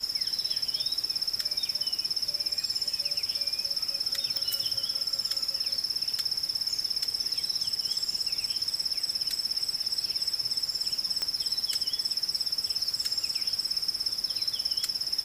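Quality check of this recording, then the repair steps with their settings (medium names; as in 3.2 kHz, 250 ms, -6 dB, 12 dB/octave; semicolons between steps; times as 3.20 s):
4.37 s: pop -14 dBFS
11.22 s: pop -14 dBFS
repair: de-click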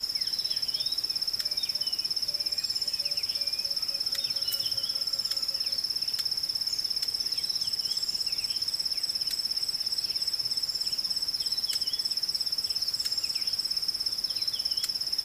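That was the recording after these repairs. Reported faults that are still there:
nothing left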